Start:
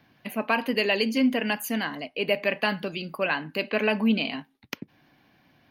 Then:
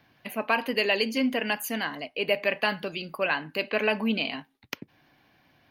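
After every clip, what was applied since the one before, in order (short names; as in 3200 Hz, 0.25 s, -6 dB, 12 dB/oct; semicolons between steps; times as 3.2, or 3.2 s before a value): bell 210 Hz -5 dB 1.2 oct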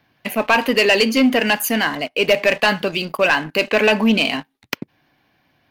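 sample leveller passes 2; gain +4.5 dB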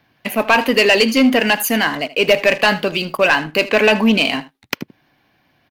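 echo 78 ms -17.5 dB; gain +2 dB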